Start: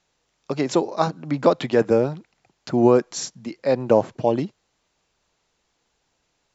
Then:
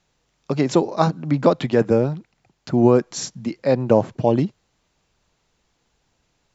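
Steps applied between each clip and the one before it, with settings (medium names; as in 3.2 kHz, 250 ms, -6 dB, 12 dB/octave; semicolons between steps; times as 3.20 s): in parallel at +3 dB: gain riding within 4 dB 0.5 s; on the sum: tone controls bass +7 dB, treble -1 dB; trim -7 dB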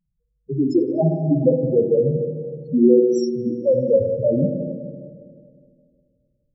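loudest bins only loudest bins 2; spring tank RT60 2.2 s, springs 51/59 ms, chirp 40 ms, DRR 2.5 dB; trim +3.5 dB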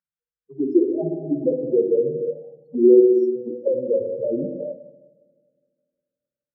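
auto-wah 380–1500 Hz, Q 3.8, down, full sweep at -17.5 dBFS; trim +3.5 dB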